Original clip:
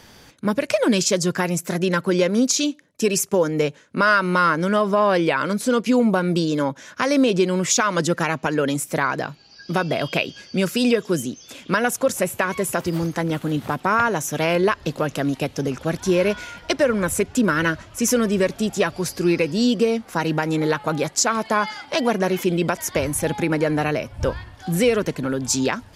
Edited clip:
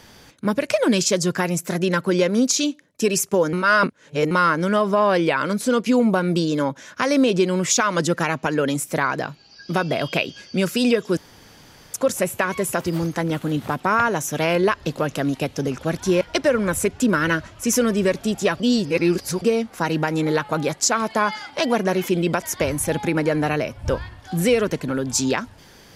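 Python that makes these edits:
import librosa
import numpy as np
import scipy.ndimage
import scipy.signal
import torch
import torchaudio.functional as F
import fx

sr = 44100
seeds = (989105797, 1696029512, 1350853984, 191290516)

y = fx.edit(x, sr, fx.reverse_span(start_s=3.53, length_s=0.78),
    fx.room_tone_fill(start_s=11.17, length_s=0.77),
    fx.cut(start_s=16.21, length_s=0.35),
    fx.reverse_span(start_s=18.95, length_s=0.82), tone=tone)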